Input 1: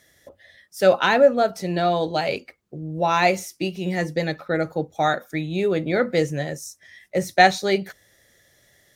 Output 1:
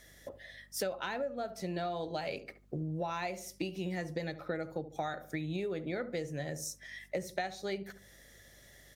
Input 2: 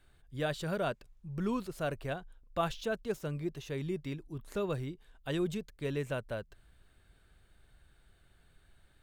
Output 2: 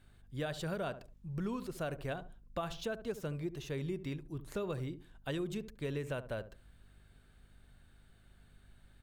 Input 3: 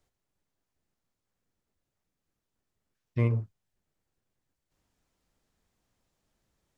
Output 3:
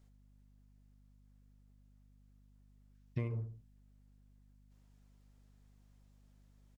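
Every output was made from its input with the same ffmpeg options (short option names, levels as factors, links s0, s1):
-filter_complex "[0:a]asplit=2[s0][s1];[s1]adelay=71,lowpass=f=800:p=1,volume=0.237,asplit=2[s2][s3];[s3]adelay=71,lowpass=f=800:p=1,volume=0.3,asplit=2[s4][s5];[s5]adelay=71,lowpass=f=800:p=1,volume=0.3[s6];[s0][s2][s4][s6]amix=inputs=4:normalize=0,acompressor=threshold=0.0224:ratio=16,aeval=exprs='val(0)+0.000708*(sin(2*PI*50*n/s)+sin(2*PI*2*50*n/s)/2+sin(2*PI*3*50*n/s)/3+sin(2*PI*4*50*n/s)/4+sin(2*PI*5*50*n/s)/5)':c=same"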